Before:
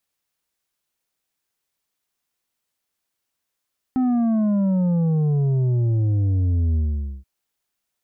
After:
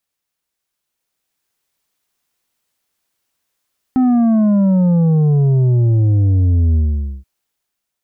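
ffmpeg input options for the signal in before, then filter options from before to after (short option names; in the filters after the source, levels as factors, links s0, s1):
-f lavfi -i "aevalsrc='0.133*clip((3.28-t)/0.48,0,1)*tanh(2.11*sin(2*PI*260*3.28/log(65/260)*(exp(log(65/260)*t/3.28)-1)))/tanh(2.11)':d=3.28:s=44100"
-af "dynaudnorm=f=480:g=5:m=2.24"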